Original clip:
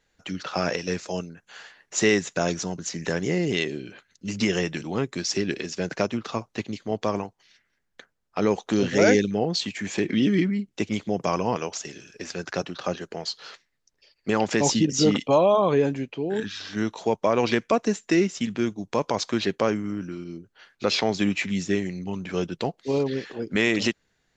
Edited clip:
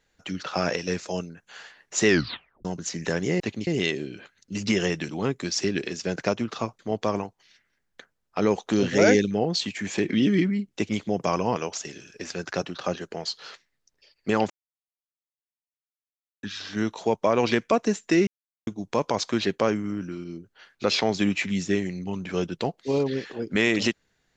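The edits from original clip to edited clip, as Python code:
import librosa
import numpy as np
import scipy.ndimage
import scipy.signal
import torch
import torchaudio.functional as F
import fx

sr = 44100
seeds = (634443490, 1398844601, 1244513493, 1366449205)

y = fx.edit(x, sr, fx.tape_stop(start_s=2.07, length_s=0.58),
    fx.move(start_s=6.52, length_s=0.27, to_s=3.4),
    fx.silence(start_s=14.5, length_s=1.93),
    fx.silence(start_s=18.27, length_s=0.4), tone=tone)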